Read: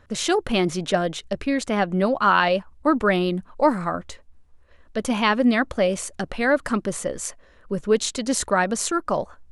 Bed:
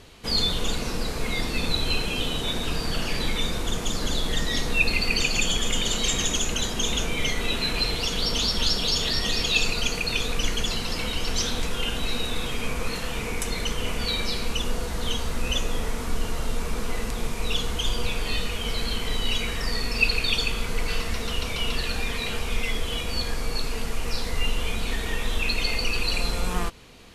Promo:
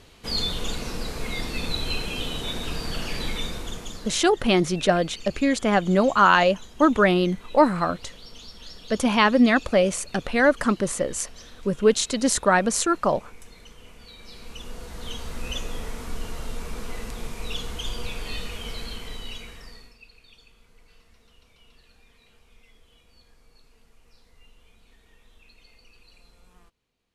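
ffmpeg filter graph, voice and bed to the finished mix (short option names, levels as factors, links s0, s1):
-filter_complex "[0:a]adelay=3950,volume=1.19[s0];[1:a]volume=3.76,afade=t=out:st=3.33:d=0.91:silence=0.141254,afade=t=in:st=14.17:d=1.27:silence=0.188365,afade=t=out:st=18.57:d=1.41:silence=0.0595662[s1];[s0][s1]amix=inputs=2:normalize=0"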